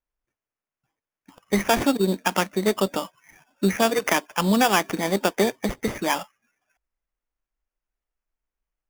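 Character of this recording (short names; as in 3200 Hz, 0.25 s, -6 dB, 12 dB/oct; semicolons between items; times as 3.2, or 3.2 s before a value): aliases and images of a low sample rate 4100 Hz, jitter 0%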